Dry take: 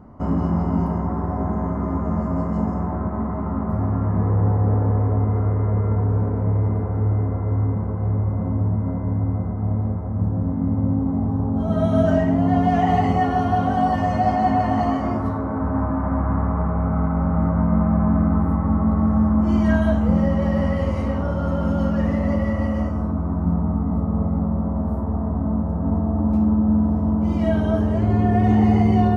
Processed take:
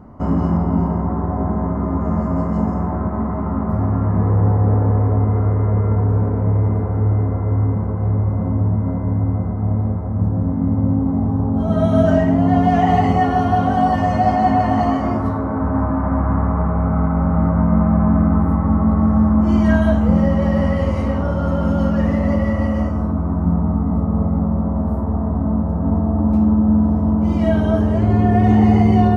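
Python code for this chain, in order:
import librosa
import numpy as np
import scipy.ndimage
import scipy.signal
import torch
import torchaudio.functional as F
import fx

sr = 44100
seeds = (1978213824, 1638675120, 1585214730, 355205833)

y = fx.high_shelf(x, sr, hz=2700.0, db=-8.5, at=(0.57, 2.01))
y = y * 10.0 ** (3.5 / 20.0)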